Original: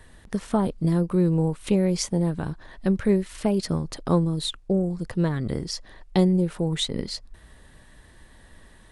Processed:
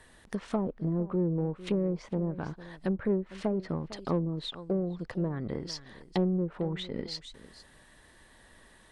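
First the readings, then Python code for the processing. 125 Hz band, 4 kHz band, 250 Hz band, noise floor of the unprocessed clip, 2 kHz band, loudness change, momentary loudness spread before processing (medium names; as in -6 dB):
-8.5 dB, -9.5 dB, -8.0 dB, -52 dBFS, -6.0 dB, -7.5 dB, 10 LU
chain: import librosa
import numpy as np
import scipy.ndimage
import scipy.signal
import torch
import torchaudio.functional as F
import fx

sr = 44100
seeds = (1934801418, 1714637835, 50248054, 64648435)

p1 = x + 10.0 ** (-18.5 / 20.0) * np.pad(x, (int(453 * sr / 1000.0), 0))[:len(x)]
p2 = fx.env_lowpass_down(p1, sr, base_hz=620.0, full_db=-18.0)
p3 = fx.low_shelf(p2, sr, hz=170.0, db=-10.5)
p4 = 10.0 ** (-24.0 / 20.0) * np.tanh(p3 / 10.0 ** (-24.0 / 20.0))
p5 = p3 + (p4 * librosa.db_to_amplitude(-4.0))
y = p5 * librosa.db_to_amplitude(-6.5)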